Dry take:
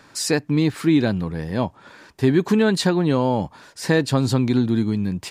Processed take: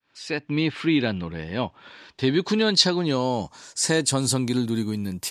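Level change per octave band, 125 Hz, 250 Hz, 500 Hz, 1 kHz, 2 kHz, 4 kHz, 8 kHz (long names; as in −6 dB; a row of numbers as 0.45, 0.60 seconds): −6.0, −5.0, −4.0, −3.5, −1.5, +5.5, +4.5 decibels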